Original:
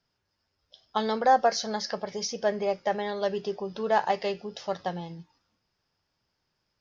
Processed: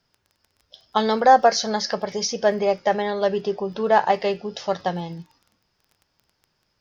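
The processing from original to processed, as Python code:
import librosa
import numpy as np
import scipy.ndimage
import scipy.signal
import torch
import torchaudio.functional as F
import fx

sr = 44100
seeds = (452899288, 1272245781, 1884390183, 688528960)

y = fx.dmg_crackle(x, sr, seeds[0], per_s=17.0, level_db=-47.0)
y = fx.high_shelf(y, sr, hz=4500.0, db=-7.0, at=(3.02, 4.45))
y = F.gain(torch.from_numpy(y), 7.0).numpy()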